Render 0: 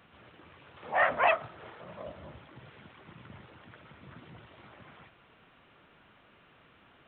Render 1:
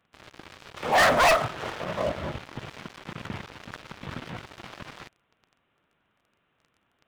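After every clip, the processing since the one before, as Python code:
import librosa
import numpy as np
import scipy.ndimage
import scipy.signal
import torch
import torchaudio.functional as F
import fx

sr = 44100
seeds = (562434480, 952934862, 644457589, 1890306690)

y = fx.leveller(x, sr, passes=5)
y = y * librosa.db_to_amplitude(-2.5)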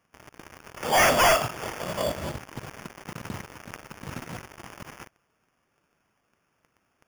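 y = fx.sample_hold(x, sr, seeds[0], rate_hz=4000.0, jitter_pct=0)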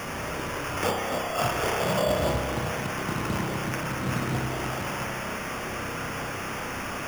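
y = x + 0.5 * 10.0 ** (-31.5 / 20.0) * np.sign(x)
y = fx.over_compress(y, sr, threshold_db=-27.0, ratio=-1.0)
y = fx.rev_spring(y, sr, rt60_s=2.3, pass_ms=(31,), chirp_ms=50, drr_db=2.0)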